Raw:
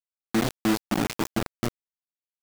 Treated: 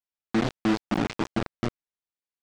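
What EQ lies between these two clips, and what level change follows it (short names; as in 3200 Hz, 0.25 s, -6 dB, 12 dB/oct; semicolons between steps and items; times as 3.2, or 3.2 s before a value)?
air absorption 120 m; 0.0 dB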